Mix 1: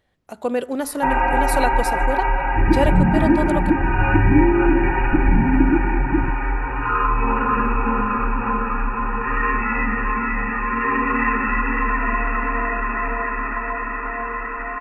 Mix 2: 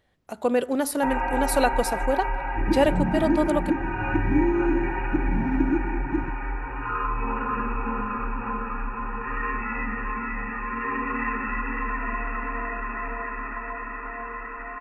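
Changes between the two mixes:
first sound −8.0 dB
second sound: add spectral tilt +3.5 dB per octave

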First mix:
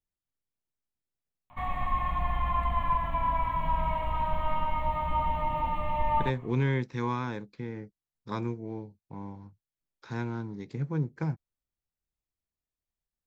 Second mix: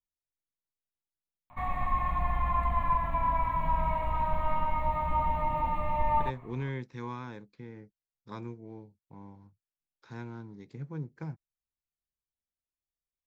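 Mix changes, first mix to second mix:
speech −8.0 dB
background: add parametric band 3,100 Hz −10 dB 0.28 octaves

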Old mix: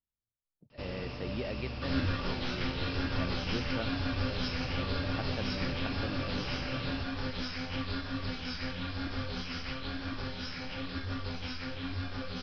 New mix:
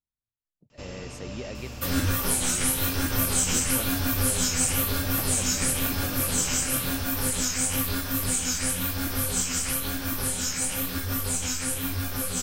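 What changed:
second sound +6.0 dB
master: remove Butterworth low-pass 5,200 Hz 96 dB per octave

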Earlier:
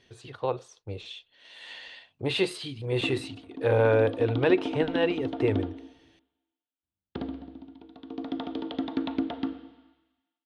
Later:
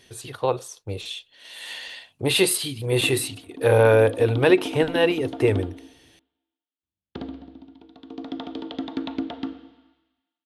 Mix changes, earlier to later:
speech +5.5 dB
master: remove high-frequency loss of the air 120 metres

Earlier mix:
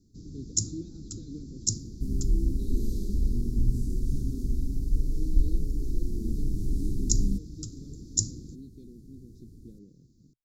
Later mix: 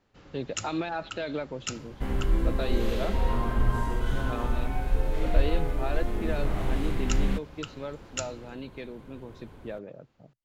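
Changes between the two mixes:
speech +4.5 dB
first sound −10.5 dB
master: remove inverse Chebyshev band-stop filter 580–3,000 Hz, stop band 40 dB

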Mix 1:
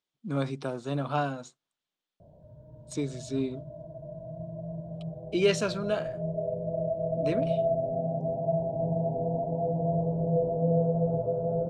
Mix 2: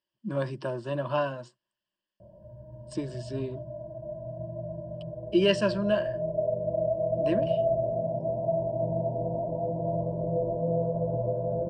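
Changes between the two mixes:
speech: add high-frequency loss of the air 90 metres
master: add EQ curve with evenly spaced ripples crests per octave 1.3, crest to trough 14 dB

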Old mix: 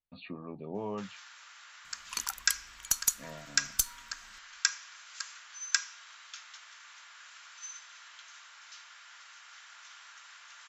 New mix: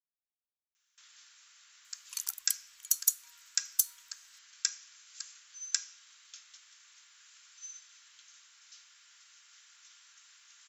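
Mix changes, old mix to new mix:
speech: muted
master: add first-order pre-emphasis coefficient 0.97

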